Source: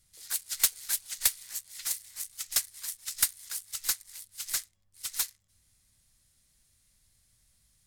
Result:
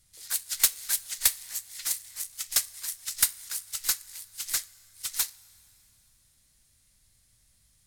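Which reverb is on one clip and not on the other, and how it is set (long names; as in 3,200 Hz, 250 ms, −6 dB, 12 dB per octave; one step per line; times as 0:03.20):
coupled-rooms reverb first 0.27 s, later 3 s, from −17 dB, DRR 14 dB
level +2.5 dB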